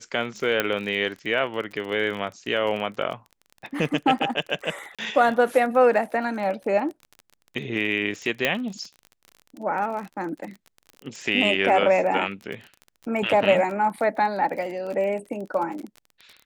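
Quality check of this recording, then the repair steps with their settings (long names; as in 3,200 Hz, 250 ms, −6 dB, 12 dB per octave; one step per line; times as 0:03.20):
surface crackle 30 per second −32 dBFS
0:00.60: click −7 dBFS
0:04.95–0:04.99: drop-out 36 ms
0:08.45: click −7 dBFS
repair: click removal
repair the gap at 0:04.95, 36 ms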